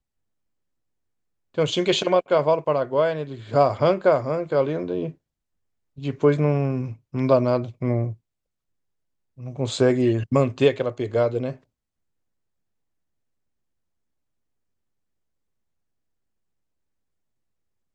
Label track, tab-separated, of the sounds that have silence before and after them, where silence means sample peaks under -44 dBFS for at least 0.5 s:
1.540000	5.130000	sound
5.970000	8.150000	sound
9.380000	11.560000	sound